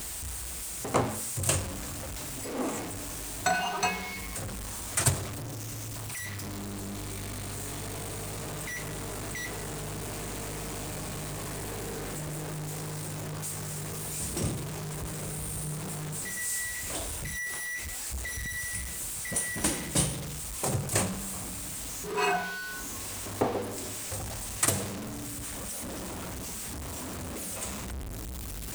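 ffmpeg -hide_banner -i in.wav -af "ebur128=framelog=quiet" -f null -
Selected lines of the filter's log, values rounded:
Integrated loudness:
  I:         -32.9 LUFS
  Threshold: -42.9 LUFS
Loudness range:
  LRA:         5.6 LU
  Threshold: -52.8 LUFS
  LRA low:   -36.0 LUFS
  LRA high:  -30.4 LUFS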